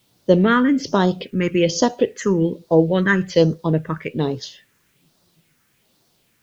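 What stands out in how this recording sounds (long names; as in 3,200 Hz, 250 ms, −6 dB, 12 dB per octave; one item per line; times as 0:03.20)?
phaser sweep stages 4, 1.2 Hz, lowest notch 680–2,200 Hz
a quantiser's noise floor 12 bits, dither triangular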